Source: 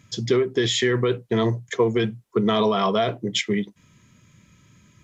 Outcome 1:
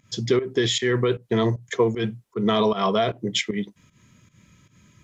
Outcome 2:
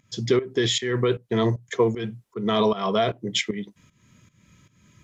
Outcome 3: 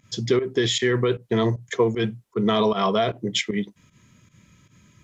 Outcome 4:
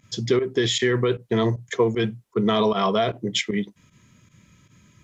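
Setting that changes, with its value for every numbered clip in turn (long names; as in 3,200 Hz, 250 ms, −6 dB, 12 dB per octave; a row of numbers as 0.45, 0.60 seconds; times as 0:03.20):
fake sidechain pumping, release: 153, 344, 97, 65 milliseconds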